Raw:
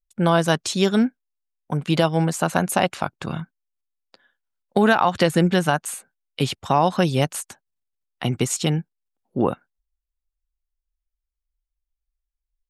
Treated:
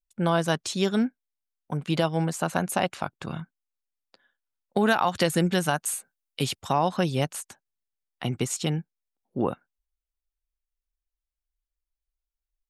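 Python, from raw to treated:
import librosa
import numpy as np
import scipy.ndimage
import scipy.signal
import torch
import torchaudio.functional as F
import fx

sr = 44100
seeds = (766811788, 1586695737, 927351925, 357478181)

y = fx.high_shelf(x, sr, hz=4900.0, db=9.0, at=(4.88, 6.73))
y = F.gain(torch.from_numpy(y), -5.5).numpy()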